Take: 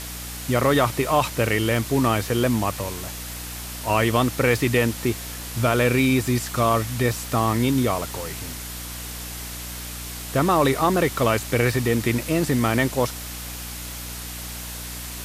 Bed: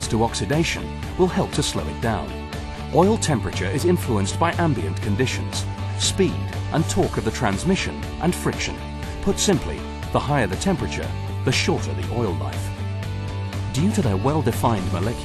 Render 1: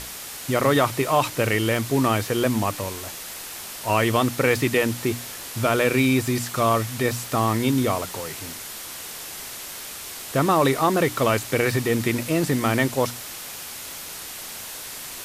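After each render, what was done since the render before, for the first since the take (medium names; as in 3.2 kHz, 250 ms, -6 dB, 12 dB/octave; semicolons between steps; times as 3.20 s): hum notches 60/120/180/240/300 Hz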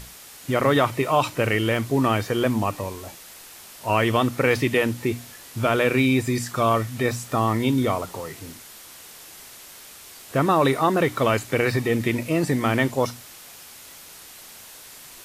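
noise print and reduce 8 dB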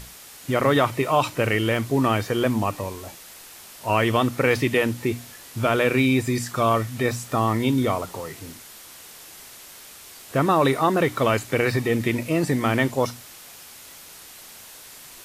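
no audible change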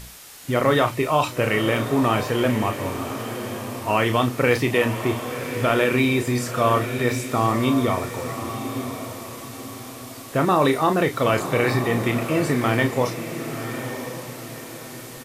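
doubling 33 ms -8 dB; echo that smears into a reverb 1025 ms, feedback 42%, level -9 dB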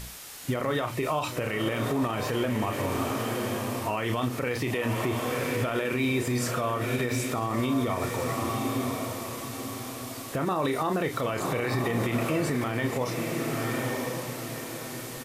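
compression, threshold -20 dBFS, peak gain reduction 7.5 dB; peak limiter -18 dBFS, peak gain reduction 8.5 dB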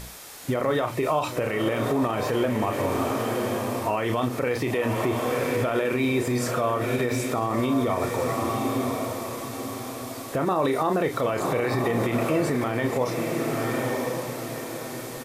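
peaking EQ 560 Hz +5.5 dB 2.2 oct; band-stop 2.9 kHz, Q 19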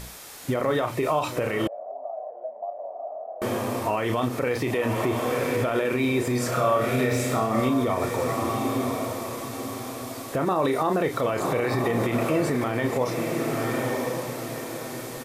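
1.67–3.42 s: Butterworth band-pass 670 Hz, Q 5; 6.49–7.69 s: flutter echo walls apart 5.4 m, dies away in 0.46 s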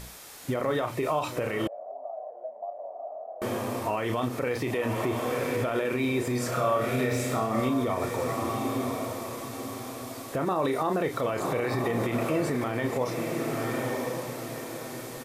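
trim -3.5 dB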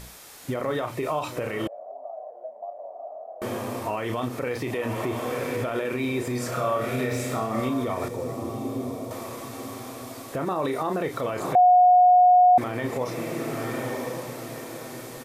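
8.08–9.11 s: FFT filter 450 Hz 0 dB, 1.6 kHz -12 dB, 5.2 kHz -6 dB; 11.55–12.58 s: bleep 724 Hz -12 dBFS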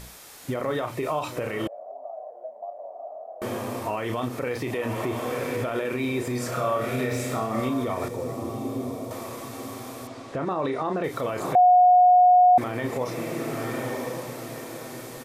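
10.07–11.04 s: distance through air 97 m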